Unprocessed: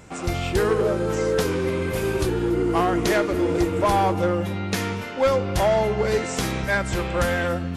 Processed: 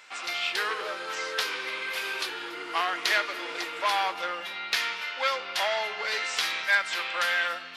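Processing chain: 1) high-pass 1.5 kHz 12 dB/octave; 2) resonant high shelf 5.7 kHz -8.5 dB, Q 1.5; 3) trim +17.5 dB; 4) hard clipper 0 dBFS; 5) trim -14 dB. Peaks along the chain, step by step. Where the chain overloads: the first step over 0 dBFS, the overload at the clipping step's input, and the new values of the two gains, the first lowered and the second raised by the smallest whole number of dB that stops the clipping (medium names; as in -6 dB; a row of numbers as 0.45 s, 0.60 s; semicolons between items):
-12.5 dBFS, -12.0 dBFS, +5.5 dBFS, 0.0 dBFS, -14.0 dBFS; step 3, 5.5 dB; step 3 +11.5 dB, step 5 -8 dB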